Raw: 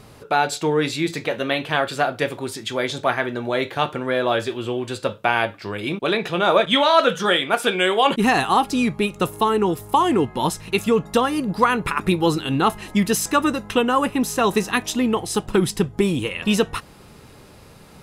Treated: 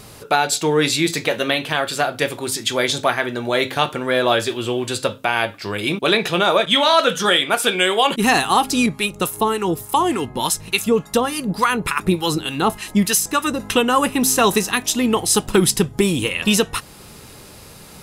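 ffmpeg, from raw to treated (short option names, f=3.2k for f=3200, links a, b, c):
-filter_complex "[0:a]asettb=1/sr,asplit=3[a][b][c];[a]atrim=end=8.864[d];[b]atrim=start=8.86:end=13.6,asetpts=PTS-STARTPTS,afade=t=in:d=0.004:c=qsin,afade=t=out:st=4.736:d=0.004:c=qsin,acrossover=split=940[e][f];[e]aeval=exprs='val(0)*(1-0.7/2+0.7/2*cos(2*PI*3.4*n/s))':c=same[g];[f]aeval=exprs='val(0)*(1-0.7/2-0.7/2*cos(2*PI*3.4*n/s))':c=same[h];[g][h]amix=inputs=2:normalize=0[i];[c]atrim=start=13.596[j];[d][i]acrossfade=d=0.004:c1=hsin:c2=qsin[k];[k][j]acrossfade=d=0.004:c1=qsin:c2=hsin,highshelf=f=3.8k:g=10.5,bandreject=f=131.2:t=h:w=4,bandreject=f=262.4:t=h:w=4,alimiter=limit=-7dB:level=0:latency=1:release=437,volume=3dB"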